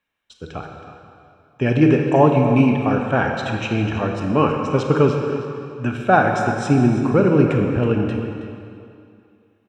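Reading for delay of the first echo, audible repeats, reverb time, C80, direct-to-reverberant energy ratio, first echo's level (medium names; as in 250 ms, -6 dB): 322 ms, 1, 2.4 s, 3.5 dB, 2.0 dB, -13.0 dB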